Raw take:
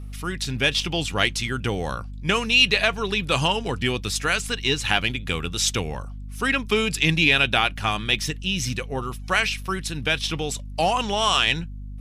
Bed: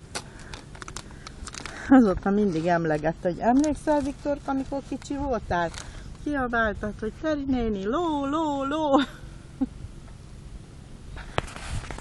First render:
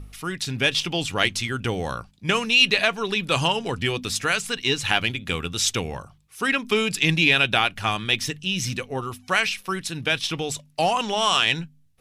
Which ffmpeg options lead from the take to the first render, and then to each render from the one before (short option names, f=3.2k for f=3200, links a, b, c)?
-af "bandreject=f=50:t=h:w=4,bandreject=f=100:t=h:w=4,bandreject=f=150:t=h:w=4,bandreject=f=200:t=h:w=4,bandreject=f=250:t=h:w=4"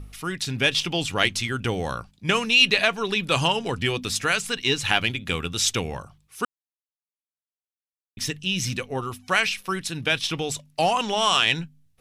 -filter_complex "[0:a]asplit=3[a][b][c];[a]atrim=end=6.45,asetpts=PTS-STARTPTS,afade=t=out:st=6.446:d=0.004:c=hsin[d];[b]atrim=start=6.45:end=8.17,asetpts=PTS-STARTPTS,volume=0[e];[c]atrim=start=8.17,asetpts=PTS-STARTPTS,afade=t=in:d=0.004:c=hsin[f];[d][e][f]concat=n=3:v=0:a=1"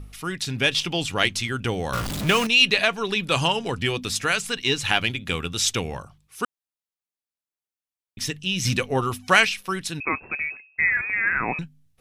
-filter_complex "[0:a]asettb=1/sr,asplit=3[a][b][c];[a]atrim=end=1.934[d];[b]atrim=start=1.93:end=2.47,asetpts=PTS-STARTPTS,afade=t=in:d=0.004:c=qsin,afade=t=out:st=0.536:d=0.004:c=qsin,aeval=exprs='val(0)+0.5*0.0708*sgn(val(0))':c=same[e];[c]atrim=start=2.466[f];[d][e]acrossfade=d=0.004:c1=hsin:c2=qsin[g];[g][f]acrossfade=d=0.004:c1=qsin:c2=hsin,asettb=1/sr,asplit=3[h][i][j];[h]atrim=end=8.654[k];[i]atrim=start=8.65:end=9.45,asetpts=PTS-STARTPTS,afade=t=in:d=0.004:c=qsin,afade=t=out:st=0.796:d=0.004:c=qsin,acontrast=44[l];[j]atrim=start=9.446[m];[k][l]acrossfade=d=0.004:c1=hsin:c2=qsin[n];[n][m]acrossfade=d=0.004:c1=qsin:c2=hsin,asettb=1/sr,asplit=3[o][p][q];[o]atrim=end=10.004[r];[p]atrim=start=10:end=11.59,asetpts=PTS-STARTPTS,afade=t=in:d=0.004:c=qsin,afade=t=out:st=1.586:d=0.004:c=qsin,lowpass=f=2.3k:t=q:w=0.5098,lowpass=f=2.3k:t=q:w=0.6013,lowpass=f=2.3k:t=q:w=0.9,lowpass=f=2.3k:t=q:w=2.563,afreqshift=-2700[s];[q]atrim=start=11.586[t];[r][s]acrossfade=d=0.004:c1=hsin:c2=qsin[u];[u][t]acrossfade=d=0.004:c1=qsin:c2=hsin"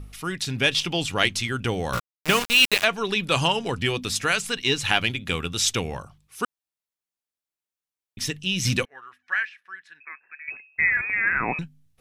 -filter_complex "[0:a]asplit=3[a][b][c];[a]afade=t=out:st=1.98:d=0.02[d];[b]aeval=exprs='val(0)*gte(abs(val(0)),0.1)':c=same,afade=t=in:st=1.98:d=0.02,afade=t=out:st=2.83:d=0.02[e];[c]afade=t=in:st=2.83:d=0.02[f];[d][e][f]amix=inputs=3:normalize=0,asettb=1/sr,asplit=3[g][h][i];[g]atrim=end=8.854[j];[h]atrim=start=8.85:end=10.48,asetpts=PTS-STARTPTS,afade=t=in:d=0.004:c=qsin,afade=t=out:st=1.626:d=0.004:c=qsin,bandpass=f=1.7k:t=q:w=9.5[k];[i]atrim=start=10.476[l];[j][k]acrossfade=d=0.004:c1=hsin:c2=qsin[m];[m][l]acrossfade=d=0.004:c1=qsin:c2=hsin"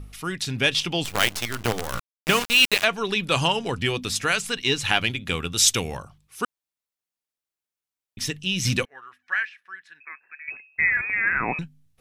-filter_complex "[0:a]asettb=1/sr,asplit=3[a][b][c];[a]atrim=end=1.044[d];[b]atrim=start=1.04:end=2.27,asetpts=PTS-STARTPTS,afade=t=in:d=0.004:c=qsin,afade=t=out:st=1.226:d=0.004:c=qsin,acrusher=bits=4:dc=4:mix=0:aa=0.000001[e];[c]atrim=start=2.266[f];[d][e]acrossfade=d=0.004:c1=hsin:c2=qsin[g];[g][f]acrossfade=d=0.004:c1=qsin:c2=hsin,asettb=1/sr,asplit=3[h][i][j];[h]atrim=end=5.574[k];[i]atrim=start=5.57:end=5.97,asetpts=PTS-STARTPTS,afade=t=in:d=0.004:c=qsin,afade=t=out:st=0.396:d=0.004:c=qsin,aemphasis=mode=production:type=cd[l];[j]atrim=start=5.966[m];[k][l]acrossfade=d=0.004:c1=hsin:c2=qsin[n];[n][m]acrossfade=d=0.004:c1=qsin:c2=hsin"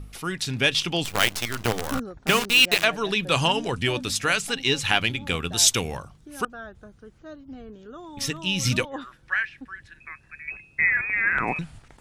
-filter_complex "[1:a]volume=-15.5dB[a];[0:a][a]amix=inputs=2:normalize=0"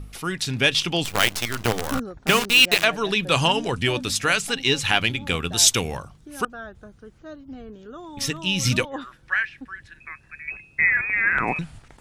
-af "volume=2dB,alimiter=limit=-3dB:level=0:latency=1"